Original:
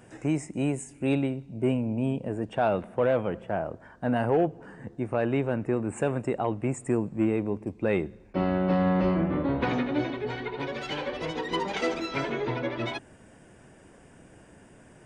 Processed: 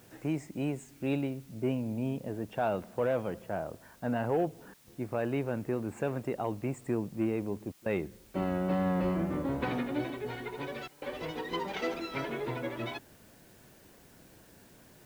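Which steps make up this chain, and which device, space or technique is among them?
worn cassette (low-pass 6.1 kHz; wow and flutter 26 cents; level dips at 4.74/7.72/10.88 s, 137 ms -23 dB; white noise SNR 28 dB); trim -5.5 dB

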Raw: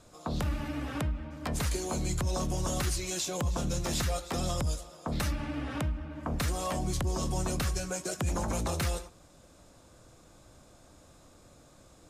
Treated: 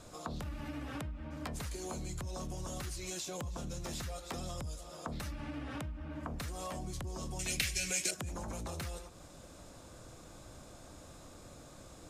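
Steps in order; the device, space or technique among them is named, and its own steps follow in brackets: serial compression, leveller first (compression 2:1, threshold -33 dBFS, peak gain reduction 4 dB; compression 4:1, threshold -44 dBFS, peak gain reduction 11.5 dB); 7.39–8.11 s: resonant high shelf 1.6 kHz +11.5 dB, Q 3; trim +4 dB

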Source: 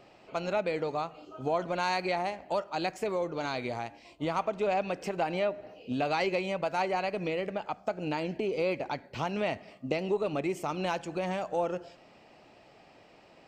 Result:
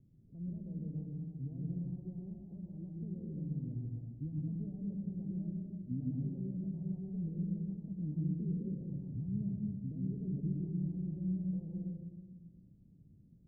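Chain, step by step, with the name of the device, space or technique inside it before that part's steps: club heard from the street (peak limiter -24 dBFS, peak gain reduction 9 dB; low-pass 190 Hz 24 dB/octave; reverberation RT60 1.5 s, pre-delay 109 ms, DRR -0.5 dB); trim +2.5 dB

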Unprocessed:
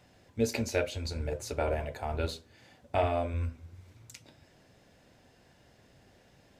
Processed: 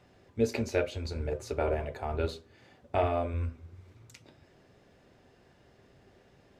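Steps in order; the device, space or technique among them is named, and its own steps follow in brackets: inside a helmet (treble shelf 4.9 kHz -9 dB; small resonant body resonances 390/1200 Hz, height 7 dB)

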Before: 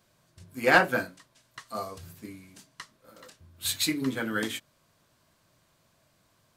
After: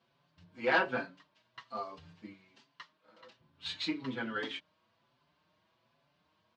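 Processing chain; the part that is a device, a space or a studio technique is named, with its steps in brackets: 2.33–3.23 s: bass shelf 340 Hz -8.5 dB; barber-pole flanger into a guitar amplifier (endless flanger 5.6 ms +1.2 Hz; saturation -17.5 dBFS, distortion -14 dB; cabinet simulation 88–4500 Hz, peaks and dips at 100 Hz -6 dB, 940 Hz +6 dB, 2.9 kHz +4 dB); trim -3.5 dB

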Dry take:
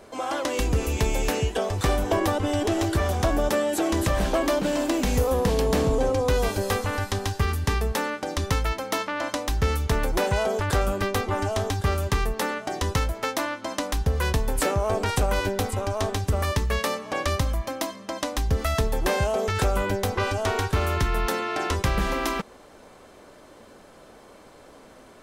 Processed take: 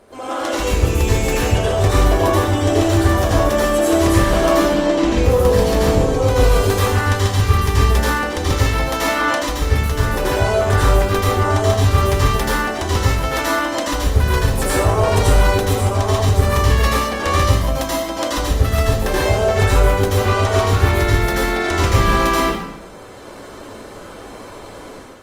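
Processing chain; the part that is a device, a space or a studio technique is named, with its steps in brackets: 4.58–5.25 s: distance through air 84 m; speakerphone in a meeting room (reverberation RT60 0.85 s, pre-delay 76 ms, DRR -6.5 dB; level rider gain up to 8 dB; trim -1 dB; Opus 32 kbps 48 kHz)

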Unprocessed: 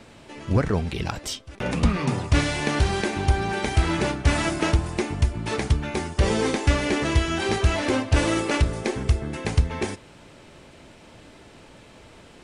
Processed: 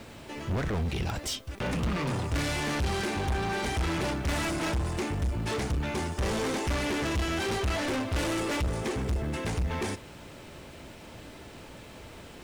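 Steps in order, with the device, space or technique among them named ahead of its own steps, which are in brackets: open-reel tape (saturation -29 dBFS, distortion -4 dB; peaking EQ 68 Hz +3.5 dB 0.95 oct; white noise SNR 34 dB); trim +1.5 dB

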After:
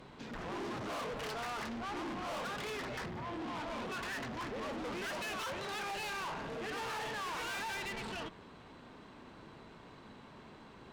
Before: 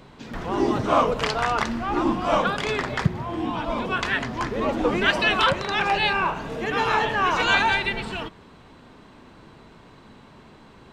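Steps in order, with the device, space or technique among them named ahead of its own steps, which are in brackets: tube preamp driven hard (valve stage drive 35 dB, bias 0.4; bass shelf 140 Hz -5 dB; treble shelf 6.3 kHz -4 dB); trim -3 dB

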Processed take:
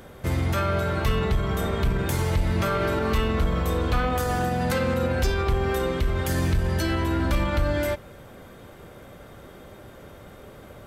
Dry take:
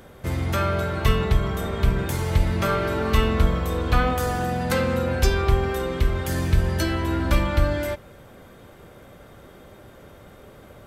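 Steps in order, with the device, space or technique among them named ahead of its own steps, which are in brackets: clipper into limiter (hard clipper -11.5 dBFS, distortion -21 dB; peak limiter -17 dBFS, peak gain reduction 5.5 dB); trim +1.5 dB

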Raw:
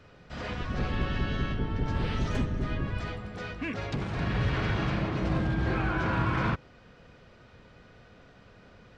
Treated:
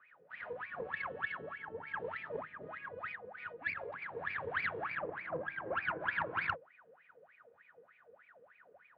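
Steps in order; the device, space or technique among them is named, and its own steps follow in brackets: 4.89–6.01 s: low-pass 2.7 kHz; wah-wah guitar rig (wah-wah 3.3 Hz 450–2400 Hz, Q 20; valve stage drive 37 dB, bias 0.7; cabinet simulation 87–3800 Hz, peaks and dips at 92 Hz +7 dB, 160 Hz +7 dB, 1.7 kHz +6 dB); trim +12.5 dB

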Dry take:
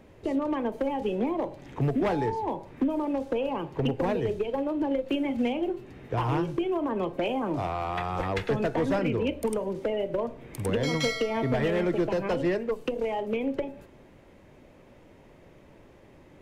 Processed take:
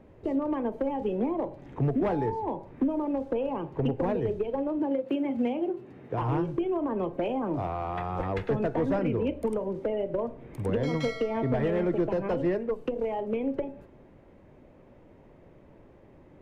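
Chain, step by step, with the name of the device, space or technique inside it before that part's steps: through cloth (treble shelf 2.3 kHz -14.5 dB); 4.79–6.22 s: high-pass 130 Hz 12 dB/octave

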